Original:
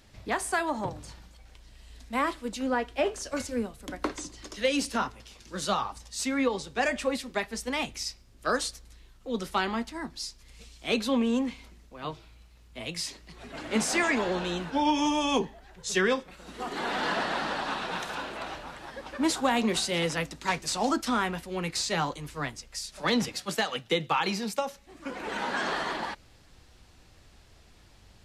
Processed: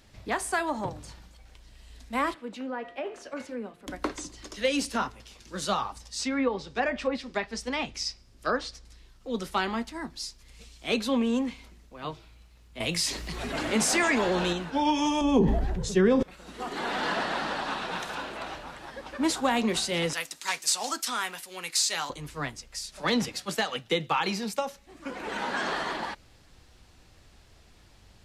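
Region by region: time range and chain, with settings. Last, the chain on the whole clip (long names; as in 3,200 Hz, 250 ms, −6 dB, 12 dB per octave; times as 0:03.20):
0:02.34–0:03.87: three-way crossover with the lows and the highs turned down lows −24 dB, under 160 Hz, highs −15 dB, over 3,300 Hz + hum removal 174.8 Hz, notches 35 + downward compressor 3 to 1, threshold −32 dBFS
0:06.01–0:09.30: treble cut that deepens with the level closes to 2,100 Hz, closed at −23 dBFS + parametric band 5,100 Hz +4.5 dB 0.37 octaves
0:12.80–0:14.53: high-shelf EQ 9,500 Hz +4.5 dB + envelope flattener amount 50%
0:15.21–0:16.23: tilt shelving filter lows +10 dB, about 660 Hz + level that may fall only so fast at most 26 dB per second
0:20.13–0:22.10: high-pass filter 1,300 Hz 6 dB per octave + high-shelf EQ 5,500 Hz +11.5 dB
whole clip: no processing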